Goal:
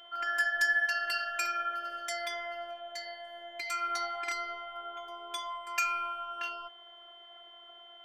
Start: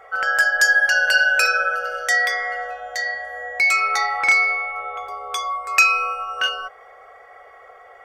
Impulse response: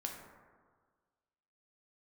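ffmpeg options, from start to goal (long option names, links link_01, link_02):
-af "aeval=exprs='val(0)+0.0178*sin(2*PI*3200*n/s)':channel_layout=same,afftfilt=real='hypot(re,im)*cos(PI*b)':imag='0':win_size=512:overlap=0.75,volume=-9dB"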